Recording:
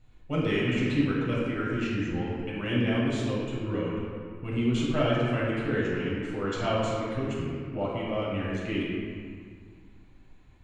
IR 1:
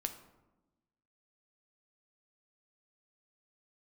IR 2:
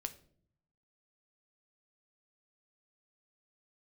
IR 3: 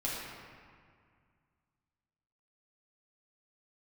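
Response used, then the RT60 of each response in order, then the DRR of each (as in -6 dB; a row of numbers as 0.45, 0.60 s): 3; 1.1, 0.60, 2.0 s; 6.0, 7.5, -6.5 dB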